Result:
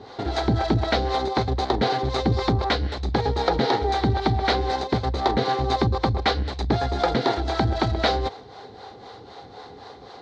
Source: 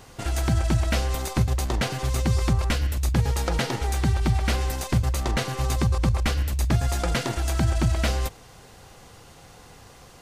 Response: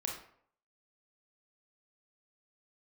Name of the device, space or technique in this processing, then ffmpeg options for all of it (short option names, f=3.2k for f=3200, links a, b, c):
guitar amplifier with harmonic tremolo: -filter_complex "[0:a]acrossover=split=430[a][b];[a]aeval=exprs='val(0)*(1-0.7/2+0.7/2*cos(2*PI*3.9*n/s))':c=same[c];[b]aeval=exprs='val(0)*(1-0.7/2-0.7/2*cos(2*PI*3.9*n/s))':c=same[d];[c][d]amix=inputs=2:normalize=0,asoftclip=type=tanh:threshold=-17dB,highpass=96,equalizer=f=150:t=q:w=4:g=-8,equalizer=f=280:t=q:w=4:g=4,equalizer=f=420:t=q:w=4:g=10,equalizer=f=790:t=q:w=4:g=9,equalizer=f=2.7k:t=q:w=4:g=-10,equalizer=f=4k:t=q:w=4:g=9,lowpass=f=4.4k:w=0.5412,lowpass=f=4.4k:w=1.3066,volume=7dB"